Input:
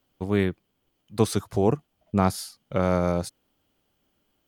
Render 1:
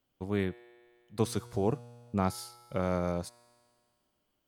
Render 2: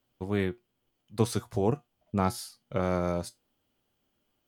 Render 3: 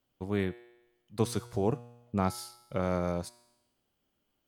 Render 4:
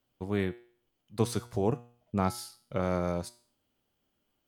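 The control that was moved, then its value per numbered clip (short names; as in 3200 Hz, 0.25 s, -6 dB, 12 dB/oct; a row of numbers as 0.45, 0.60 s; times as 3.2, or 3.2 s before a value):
resonator, decay: 2.1, 0.18, 1, 0.49 s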